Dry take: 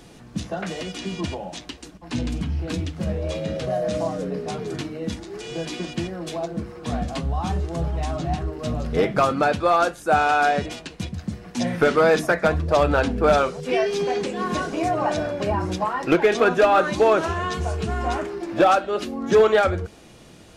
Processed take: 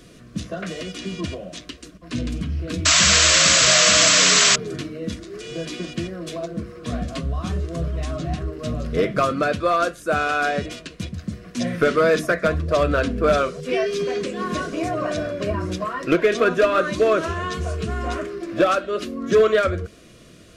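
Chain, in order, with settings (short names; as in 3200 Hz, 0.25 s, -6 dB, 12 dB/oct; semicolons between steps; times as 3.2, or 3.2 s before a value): painted sound noise, 2.85–4.56, 590–8000 Hz -15 dBFS; Butterworth band-stop 840 Hz, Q 2.7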